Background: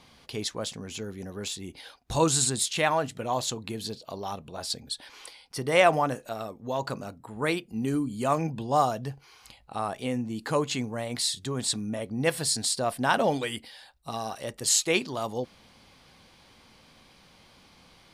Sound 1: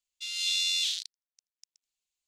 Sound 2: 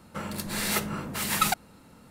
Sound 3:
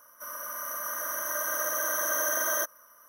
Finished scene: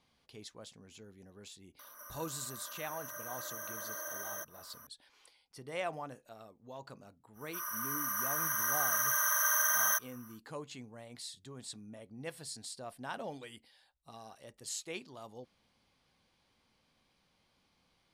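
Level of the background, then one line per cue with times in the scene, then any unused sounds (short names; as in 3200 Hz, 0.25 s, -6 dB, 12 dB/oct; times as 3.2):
background -17.5 dB
1.79 add 3 -14 dB + upward compressor 4:1, threshold -31 dBFS
7.33 add 3 -0.5 dB, fades 0.10 s + HPF 890 Hz 24 dB/oct
not used: 1, 2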